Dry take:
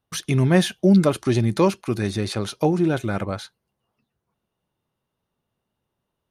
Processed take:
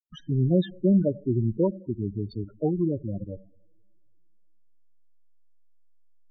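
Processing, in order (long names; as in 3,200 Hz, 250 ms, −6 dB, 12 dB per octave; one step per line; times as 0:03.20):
slack as between gear wheels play −21.5 dBFS
coupled-rooms reverb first 0.88 s, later 3.1 s, from −24 dB, DRR 17 dB
spectral peaks only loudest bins 8
level −4 dB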